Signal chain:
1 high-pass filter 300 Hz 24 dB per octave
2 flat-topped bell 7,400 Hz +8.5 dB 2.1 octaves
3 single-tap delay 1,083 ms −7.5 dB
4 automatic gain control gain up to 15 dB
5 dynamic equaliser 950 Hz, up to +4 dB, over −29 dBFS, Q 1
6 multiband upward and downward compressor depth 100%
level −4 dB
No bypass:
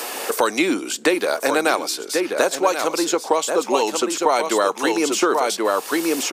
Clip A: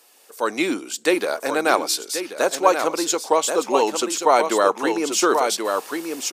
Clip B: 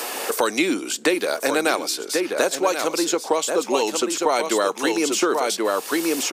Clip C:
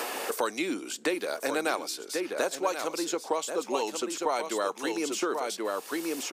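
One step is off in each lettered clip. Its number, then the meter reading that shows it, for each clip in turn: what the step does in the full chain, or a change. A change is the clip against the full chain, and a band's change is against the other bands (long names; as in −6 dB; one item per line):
6, change in crest factor +2.0 dB
5, 1 kHz band −2.0 dB
4, change in integrated loudness −10.5 LU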